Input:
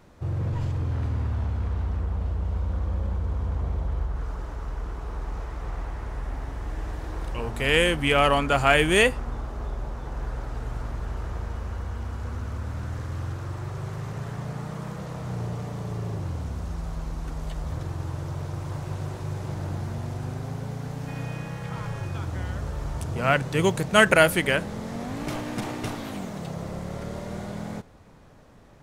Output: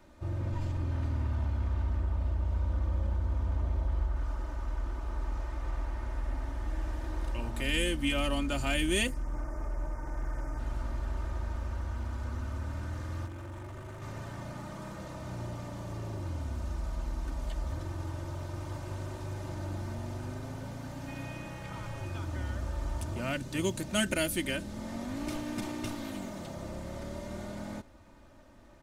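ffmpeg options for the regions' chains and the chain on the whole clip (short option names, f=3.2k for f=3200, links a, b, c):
-filter_complex "[0:a]asettb=1/sr,asplit=3[a][b][c];[a]atrim=end=9.074[d];[b]atrim=start=9.07:end=10.59,asetpts=PTS-STARTPTS,afade=t=in:d=0.004:c=qsin,afade=t=out:st=1.516:d=0.004:c=qsin,asuperstop=centerf=3400:order=8:qfactor=1.2,aecho=1:1:6.6:0.57,atrim=end_sample=67032,asoftclip=type=hard:threshold=-26.5dB[e];[c]atrim=start=10.586[f];[d][e]acrossfade=d=0.004:c1=hsin:c2=qsin[g];[g][f]acrossfade=d=0.004:c1=qsin:c2=hsin,asettb=1/sr,asplit=3[h][i][j];[h]atrim=end=13.264[k];[i]atrim=start=13.26:end=14.02,asetpts=PTS-STARTPTS,afade=t=in:d=0.004:c=qsin,afade=t=out:st=0.756:d=0.004:c=qsin,equalizer=f=4.7k:t=o:w=0.56:g=-7,asoftclip=type=hard:threshold=-35dB[l];[j]atrim=start=14.016[m];[k][l]acrossfade=d=0.004:c1=hsin:c2=qsin[n];[n][m]acrossfade=d=0.004:c1=qsin:c2=hsin,bandreject=f=440:w=12,aecho=1:1:3.3:0.63,acrossover=split=350|3000[o][p][q];[p]acompressor=threshold=-38dB:ratio=2.5[r];[o][r][q]amix=inputs=3:normalize=0,volume=-5dB"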